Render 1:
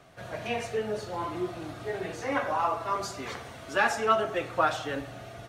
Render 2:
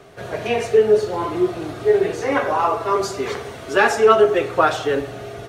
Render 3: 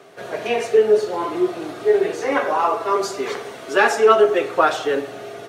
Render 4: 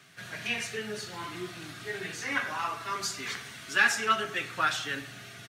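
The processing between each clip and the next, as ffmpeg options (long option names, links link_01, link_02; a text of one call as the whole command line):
ffmpeg -i in.wav -af "equalizer=frequency=410:width_type=o:width=0.3:gain=13.5,volume=8dB" out.wav
ffmpeg -i in.wav -af "highpass=230" out.wav
ffmpeg -i in.wav -af "firequalizer=gain_entry='entry(150,0);entry(420,-24);entry(1600,-2);entry(4800,0)':delay=0.05:min_phase=1,volume=-1.5dB" out.wav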